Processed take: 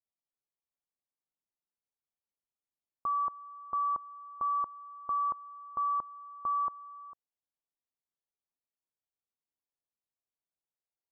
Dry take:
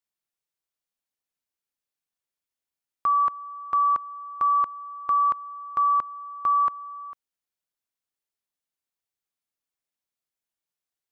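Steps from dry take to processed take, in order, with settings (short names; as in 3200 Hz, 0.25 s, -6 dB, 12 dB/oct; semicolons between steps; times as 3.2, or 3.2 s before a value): inverse Chebyshev low-pass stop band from 2200 Hz, stop band 40 dB; gain -5.5 dB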